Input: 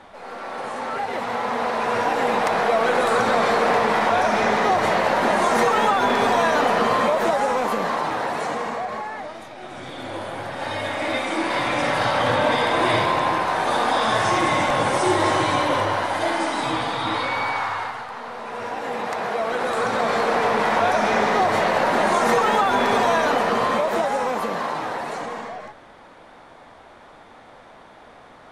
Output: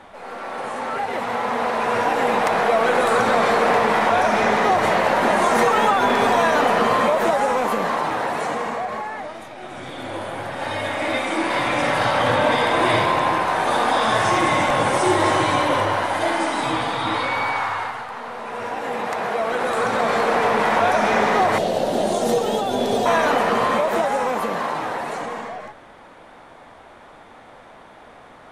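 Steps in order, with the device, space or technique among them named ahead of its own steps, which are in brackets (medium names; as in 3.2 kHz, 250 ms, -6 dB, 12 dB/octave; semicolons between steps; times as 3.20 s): 21.58–23.06 s: high-order bell 1.5 kHz -15 dB; exciter from parts (in parallel at -9 dB: high-pass 4.4 kHz 12 dB/octave + saturation -30.5 dBFS, distortion -18 dB + high-pass 2.5 kHz 24 dB/octave); on the sum: trim +1.5 dB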